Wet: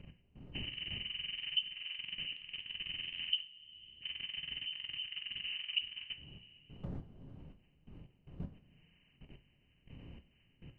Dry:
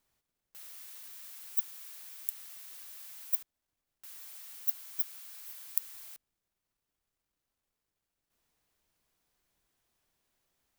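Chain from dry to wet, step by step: nonlinear frequency compression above 1600 Hz 4:1; wind noise 170 Hz -50 dBFS; level quantiser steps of 20 dB; two-slope reverb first 0.33 s, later 2.1 s, from -22 dB, DRR 6.5 dB; compressor 2:1, threshold -54 dBFS, peak gain reduction 19 dB; gain +8 dB

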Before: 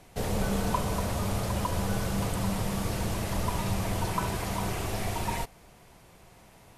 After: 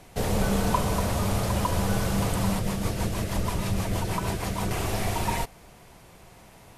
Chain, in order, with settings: 2.59–4.71 rotary speaker horn 6.3 Hz; gain +4 dB

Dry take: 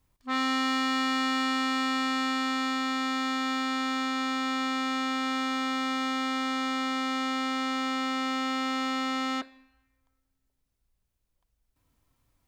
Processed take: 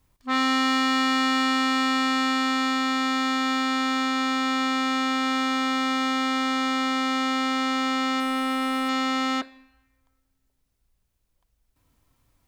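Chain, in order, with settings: 8.2–8.89 median filter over 9 samples; gain +5 dB

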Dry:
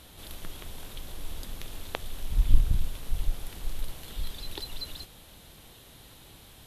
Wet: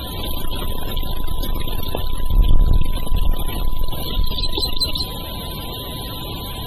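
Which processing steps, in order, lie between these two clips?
power-law curve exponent 0.5; loudest bins only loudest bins 64; high shelf 7400 Hz +5.5 dB; whine 1000 Hz -41 dBFS; gain +3 dB

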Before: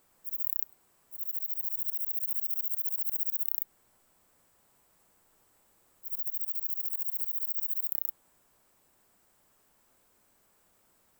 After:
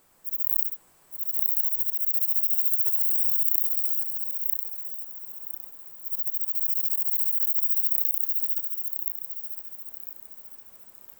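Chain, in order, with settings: regenerating reverse delay 0.505 s, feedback 59%, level -1 dB; gain +5.5 dB

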